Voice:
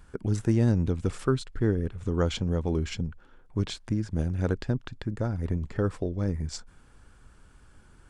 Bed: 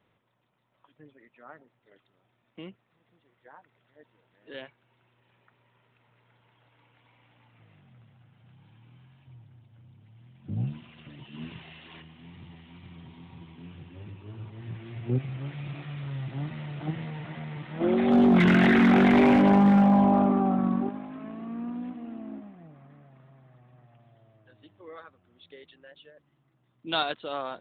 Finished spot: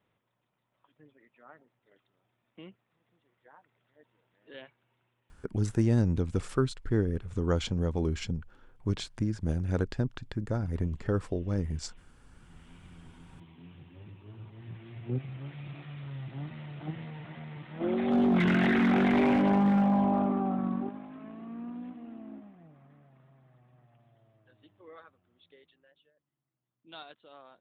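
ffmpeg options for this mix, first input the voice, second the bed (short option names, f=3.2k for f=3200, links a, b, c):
-filter_complex "[0:a]adelay=5300,volume=-2dB[a];[1:a]volume=8.5dB,afade=t=out:st=4.82:d=0.79:silence=0.199526,afade=t=in:st=12.28:d=0.43:silence=0.199526,afade=t=out:st=24.96:d=1.2:silence=0.211349[b];[a][b]amix=inputs=2:normalize=0"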